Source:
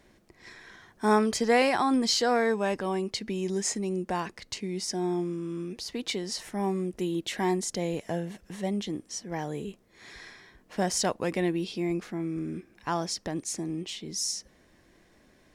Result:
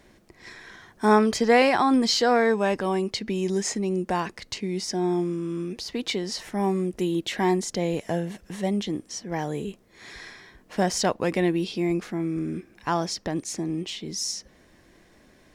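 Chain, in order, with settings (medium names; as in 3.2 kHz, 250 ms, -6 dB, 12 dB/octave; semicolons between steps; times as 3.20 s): dynamic bell 9.7 kHz, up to -7 dB, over -49 dBFS, Q 0.86; trim +4.5 dB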